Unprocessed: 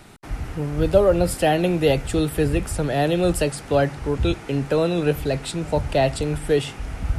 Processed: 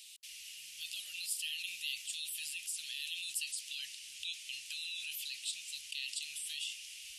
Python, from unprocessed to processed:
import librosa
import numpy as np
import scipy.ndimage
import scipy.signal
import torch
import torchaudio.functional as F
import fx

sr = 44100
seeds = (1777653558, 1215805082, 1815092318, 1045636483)

p1 = scipy.signal.sosfilt(scipy.signal.ellip(4, 1.0, 60, 2800.0, 'highpass', fs=sr, output='sos'), x)
p2 = fx.over_compress(p1, sr, threshold_db=-44.0, ratio=-1.0)
p3 = p1 + F.gain(torch.from_numpy(p2), 1.5).numpy()
y = F.gain(torch.from_numpy(p3), -7.5).numpy()